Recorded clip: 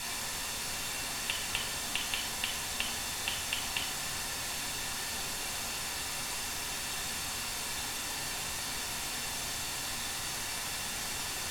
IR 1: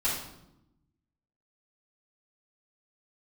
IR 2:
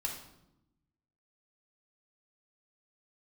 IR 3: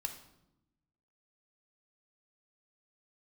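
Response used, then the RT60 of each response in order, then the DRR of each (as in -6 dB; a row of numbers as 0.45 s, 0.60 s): 2; 0.85 s, 0.85 s, 0.85 s; -10.0 dB, -0.5 dB, 5.0 dB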